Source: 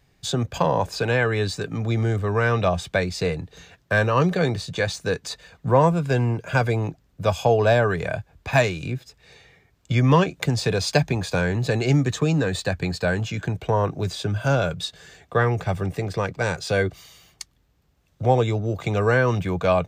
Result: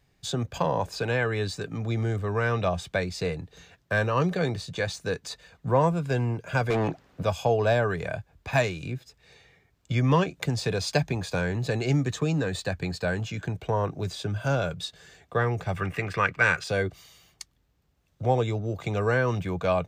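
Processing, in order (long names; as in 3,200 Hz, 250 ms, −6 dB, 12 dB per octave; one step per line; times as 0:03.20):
0:06.70–0:07.23: mid-hump overdrive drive 27 dB, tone 1,600 Hz, clips at −12 dBFS
0:15.76–0:16.64: flat-topped bell 1,800 Hz +12.5 dB
level −5 dB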